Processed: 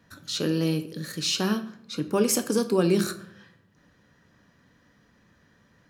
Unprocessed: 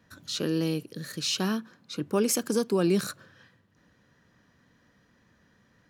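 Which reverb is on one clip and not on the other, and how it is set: simulated room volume 90 m³, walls mixed, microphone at 0.3 m; trim +2 dB

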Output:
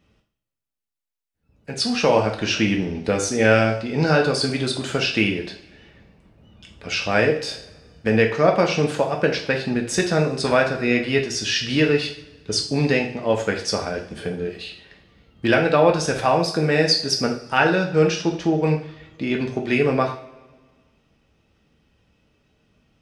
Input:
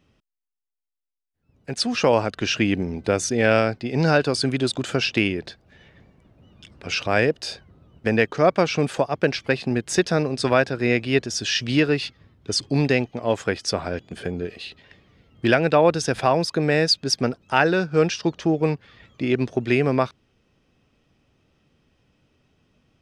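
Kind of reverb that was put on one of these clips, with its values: two-slope reverb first 0.5 s, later 1.6 s, from -18 dB, DRR 1 dB; trim -1 dB

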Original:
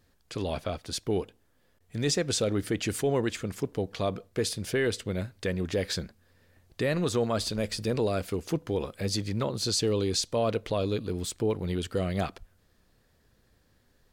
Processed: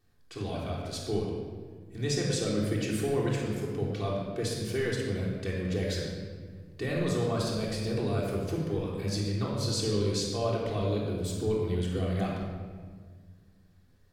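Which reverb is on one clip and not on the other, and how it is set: simulated room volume 2000 m³, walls mixed, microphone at 3.5 m; trim -8.5 dB

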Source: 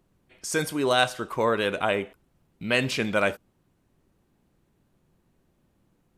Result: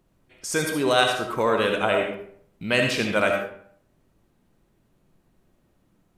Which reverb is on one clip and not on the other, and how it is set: algorithmic reverb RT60 0.6 s, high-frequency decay 0.65×, pre-delay 30 ms, DRR 2.5 dB; trim +1 dB

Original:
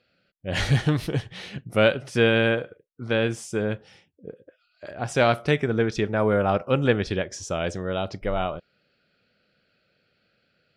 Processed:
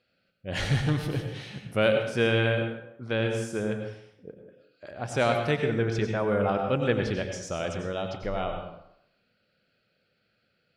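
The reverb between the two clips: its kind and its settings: plate-style reverb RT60 0.74 s, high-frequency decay 0.75×, pre-delay 80 ms, DRR 4.5 dB; trim -5 dB

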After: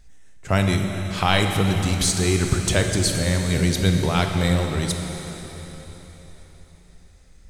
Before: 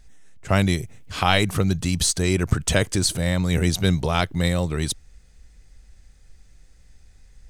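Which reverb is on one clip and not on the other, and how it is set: plate-style reverb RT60 4.2 s, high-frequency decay 0.95×, DRR 3 dB; trim -1 dB

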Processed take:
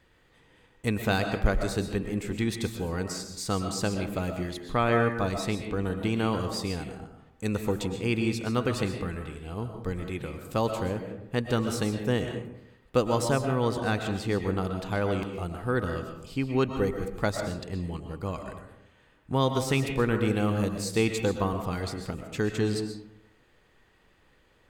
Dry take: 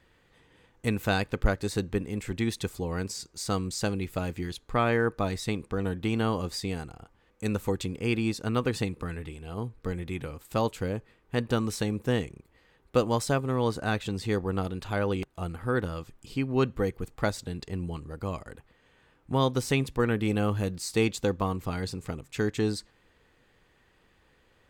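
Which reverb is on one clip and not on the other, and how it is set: algorithmic reverb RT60 0.81 s, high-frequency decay 0.45×, pre-delay 85 ms, DRR 5.5 dB

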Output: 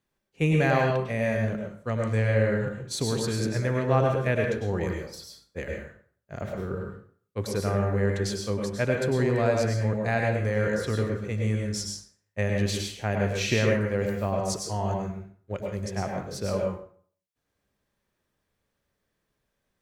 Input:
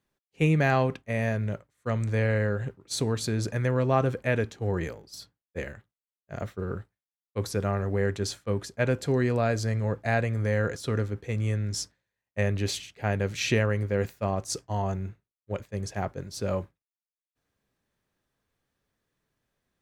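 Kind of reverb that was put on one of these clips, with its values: plate-style reverb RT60 0.51 s, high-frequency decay 0.75×, pre-delay 90 ms, DRR 0.5 dB; trim -1 dB

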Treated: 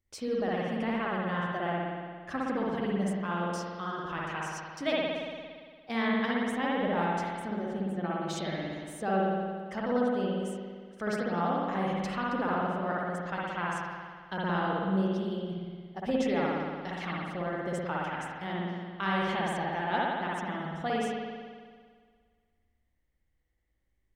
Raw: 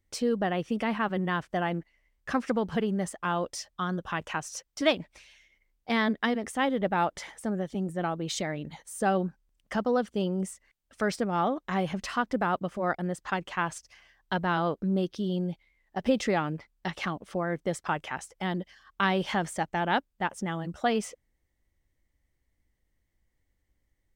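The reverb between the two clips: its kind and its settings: spring tank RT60 1.8 s, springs 57 ms, chirp 30 ms, DRR -5 dB; trim -8 dB

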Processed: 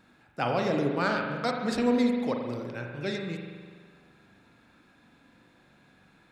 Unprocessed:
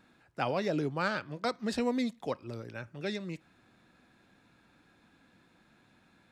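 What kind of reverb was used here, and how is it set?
spring tank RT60 1.7 s, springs 41 ms, chirp 40 ms, DRR 2 dB; trim +2.5 dB

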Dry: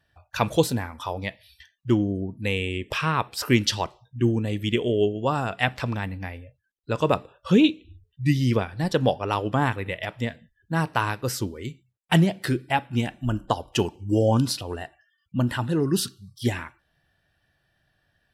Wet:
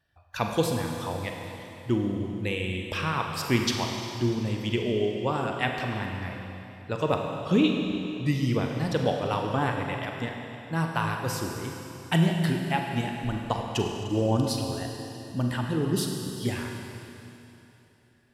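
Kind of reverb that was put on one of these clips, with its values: Schroeder reverb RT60 3.1 s, combs from 33 ms, DRR 2 dB; trim -5 dB

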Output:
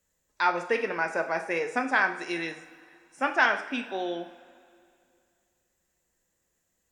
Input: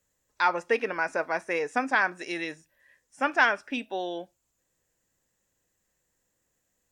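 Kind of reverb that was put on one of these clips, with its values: two-slope reverb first 0.51 s, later 2.5 s, from -16 dB, DRR 5.5 dB; trim -1 dB

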